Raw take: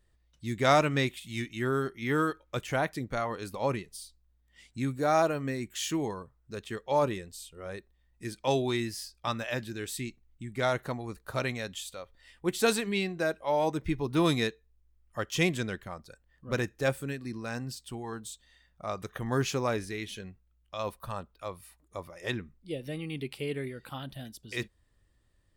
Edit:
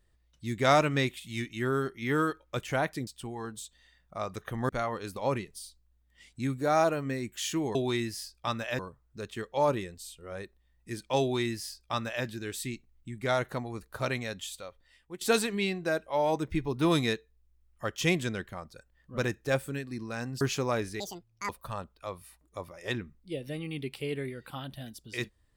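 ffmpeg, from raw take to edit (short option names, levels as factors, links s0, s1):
-filter_complex "[0:a]asplit=9[s0][s1][s2][s3][s4][s5][s6][s7][s8];[s0]atrim=end=3.072[s9];[s1]atrim=start=17.748:end=19.372[s10];[s2]atrim=start=3.068:end=6.132[s11];[s3]atrim=start=8.548:end=9.592[s12];[s4]atrim=start=6.128:end=12.55,asetpts=PTS-STARTPTS,afade=t=out:st=5.782:d=0.64:silence=0.133352[s13];[s5]atrim=start=12.55:end=17.752,asetpts=PTS-STARTPTS,afade=t=in:d=0.004:c=hsin:silence=0.133352[s14];[s6]atrim=start=19.368:end=19.964[s15];[s7]atrim=start=19.96:end=20.88,asetpts=PTS-STARTPTS,asetrate=82467,aresample=44100,atrim=end_sample=21696,asetpts=PTS-STARTPTS[s16];[s8]atrim=start=20.876[s17];[s9][s10]acrossfade=d=0.004:c1=hsin:c2=hsin[s18];[s18][s11]acrossfade=d=0.004:c1=hsin:c2=hsin[s19];[s19][s12]acrossfade=d=0.004:c1=hsin:c2=hsin[s20];[s13][s14]concat=n=2:v=0:a=1[s21];[s20][s21]acrossfade=d=0.004:c1=hsin:c2=hsin[s22];[s22][s15]acrossfade=d=0.004:c1=hsin:c2=hsin[s23];[s23][s16]acrossfade=d=0.004:c1=hsin:c2=hsin[s24];[s24][s17]acrossfade=d=0.004:c1=hsin:c2=hsin"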